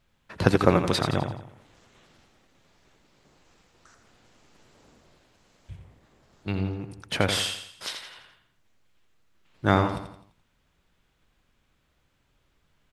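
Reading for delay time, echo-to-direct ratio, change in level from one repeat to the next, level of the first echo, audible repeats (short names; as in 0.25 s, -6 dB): 85 ms, -7.0 dB, -7.0 dB, -8.0 dB, 4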